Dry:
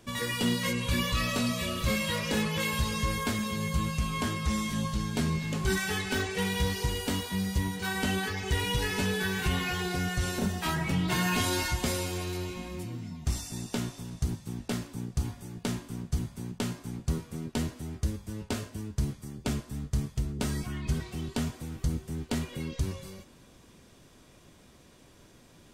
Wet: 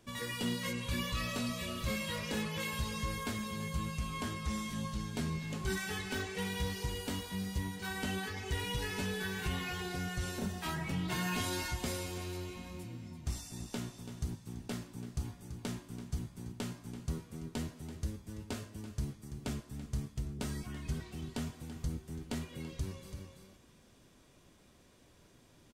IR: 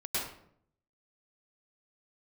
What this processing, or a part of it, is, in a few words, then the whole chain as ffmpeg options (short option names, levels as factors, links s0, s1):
ducked delay: -filter_complex "[0:a]asplit=3[s0][s1][s2];[s1]adelay=334,volume=0.501[s3];[s2]apad=whole_len=1149439[s4];[s3][s4]sidechaincompress=threshold=0.00708:ratio=5:attack=38:release=268[s5];[s0][s5]amix=inputs=2:normalize=0,volume=0.422"